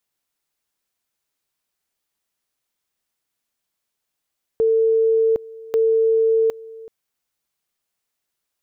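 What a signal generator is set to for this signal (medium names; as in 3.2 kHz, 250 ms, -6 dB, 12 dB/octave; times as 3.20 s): two-level tone 448 Hz -13.5 dBFS, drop 21 dB, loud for 0.76 s, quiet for 0.38 s, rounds 2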